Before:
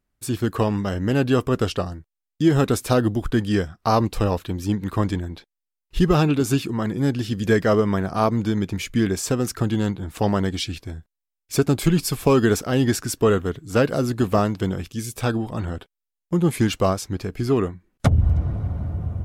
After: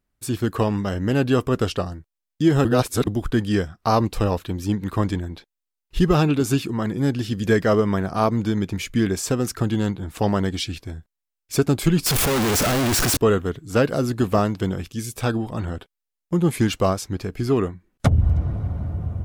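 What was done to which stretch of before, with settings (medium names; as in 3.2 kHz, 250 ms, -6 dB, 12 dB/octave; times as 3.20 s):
2.65–3.07 s: reverse
12.06–13.17 s: one-bit comparator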